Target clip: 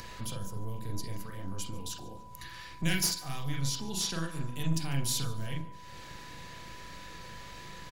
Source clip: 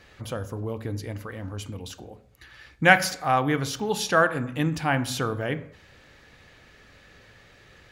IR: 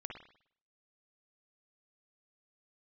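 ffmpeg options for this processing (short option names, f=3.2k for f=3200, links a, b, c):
-filter_complex "[0:a]acompressor=mode=upward:threshold=-35dB:ratio=2.5,bass=f=250:g=9,treble=f=4k:g=12,acrossover=split=220|2700[a][b][c];[a]aeval=exprs='max(val(0),0)':c=same[d];[b]acompressor=threshold=-39dB:ratio=6[e];[c]aeval=exprs='clip(val(0),-1,0.133)':c=same[f];[d][e][f]amix=inputs=3:normalize=0[g];[1:a]atrim=start_sample=2205,afade=t=out:st=0.14:d=0.01,atrim=end_sample=6615,asetrate=61740,aresample=44100[h];[g][h]afir=irnorm=-1:irlink=0,aeval=exprs='val(0)+0.00355*sin(2*PI*990*n/s)':c=same,asettb=1/sr,asplit=3[i][j][k];[i]atrim=end=3.484[l];[j]atrim=start=3.48:end=4.26,asetpts=PTS-STARTPTS,afade=t=in:d=0.004:c=qsin,afade=t=out:st=0.776:d=0.004:c=qsin,highshelf=f=9.7k:g=-10[m];[k]atrim=start=4.256[n];[l][m]acrossfade=d=0.004:c1=hsin:c2=qsin[o];[o][n]acrossfade=d=0.004:c1=qsin:c2=hsin,aecho=1:1:146|292|438:0.0891|0.0365|0.015"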